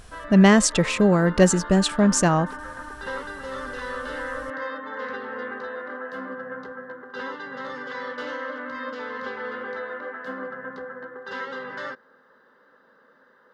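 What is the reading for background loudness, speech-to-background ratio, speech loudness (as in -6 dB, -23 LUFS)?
-34.0 LUFS, 15.0 dB, -19.0 LUFS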